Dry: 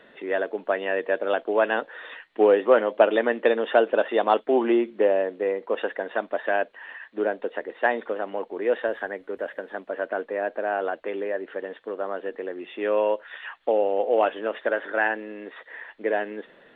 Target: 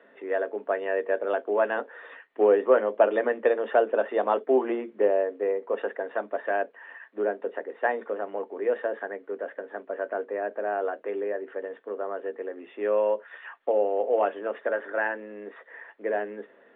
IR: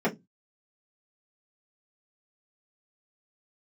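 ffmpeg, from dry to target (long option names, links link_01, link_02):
-filter_complex "[0:a]acrossover=split=210 2500:gain=0.126 1 0.126[link_01][link_02][link_03];[link_01][link_02][link_03]amix=inputs=3:normalize=0,asplit=2[link_04][link_05];[1:a]atrim=start_sample=2205,atrim=end_sample=3528[link_06];[link_05][link_06]afir=irnorm=-1:irlink=0,volume=-22.5dB[link_07];[link_04][link_07]amix=inputs=2:normalize=0,volume=-4dB"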